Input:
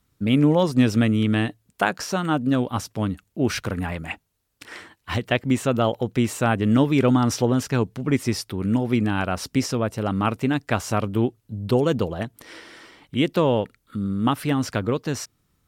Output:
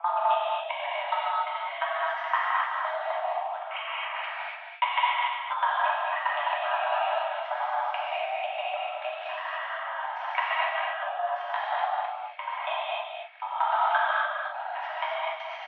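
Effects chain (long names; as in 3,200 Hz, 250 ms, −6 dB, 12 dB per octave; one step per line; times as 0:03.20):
slices reordered back to front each 86 ms, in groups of 7
comb filter 3.2 ms, depth 36%
output level in coarse steps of 19 dB
transient designer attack +6 dB, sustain −3 dB
downward compressor, threshold −26 dBFS, peak gain reduction 14 dB
single-sideband voice off tune +360 Hz 380–2,700 Hz
on a send: loudspeakers that aren't time-aligned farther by 72 metres −8 dB, 86 metres −8 dB
on the sum: reverb whose tail is shaped and stops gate 320 ms flat, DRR −7.5 dB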